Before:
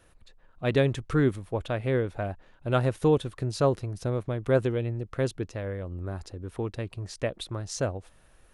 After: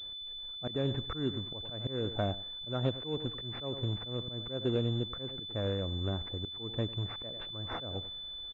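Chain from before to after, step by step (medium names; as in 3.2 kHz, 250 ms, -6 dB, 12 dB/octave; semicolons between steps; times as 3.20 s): dynamic bell 240 Hz, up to +4 dB, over -40 dBFS, Q 1.7; on a send: feedback delay 98 ms, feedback 17%, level -18.5 dB; on the sum: compression 3:1, threshold -26 dBFS, peak gain reduction 8 dB; in parallel at -8 dB: companded quantiser 4-bit; on the sum: slow attack 209 ms; class-D stage that switches slowly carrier 3.5 kHz; trim -3 dB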